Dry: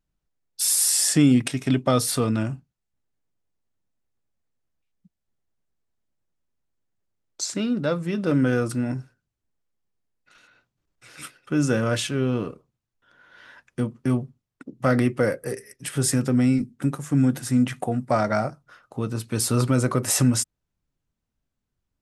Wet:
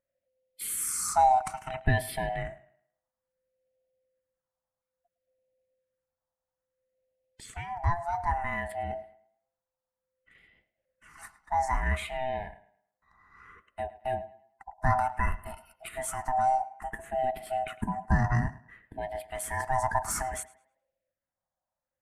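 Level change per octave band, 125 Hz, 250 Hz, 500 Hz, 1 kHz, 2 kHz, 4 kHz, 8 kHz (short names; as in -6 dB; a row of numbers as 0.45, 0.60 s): -9.5, -19.0, -8.5, +5.5, -2.5, -15.5, -11.5 dB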